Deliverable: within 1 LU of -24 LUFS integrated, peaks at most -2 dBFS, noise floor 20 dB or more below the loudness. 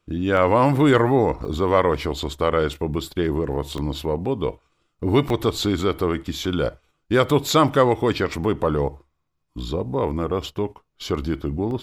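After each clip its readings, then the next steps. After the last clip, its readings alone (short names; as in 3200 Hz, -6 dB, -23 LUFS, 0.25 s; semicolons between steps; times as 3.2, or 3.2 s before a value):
dropouts 6; longest dropout 1.3 ms; loudness -22.0 LUFS; peak -3.5 dBFS; loudness target -24.0 LUFS
-> interpolate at 0.37/1.45/3.78/5.3/7.29/11.71, 1.3 ms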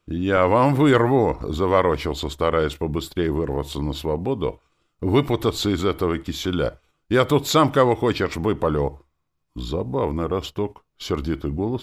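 dropouts 0; loudness -22.0 LUFS; peak -3.5 dBFS; loudness target -24.0 LUFS
-> gain -2 dB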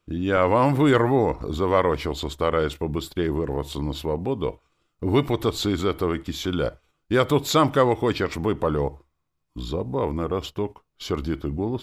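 loudness -24.0 LUFS; peak -5.5 dBFS; noise floor -74 dBFS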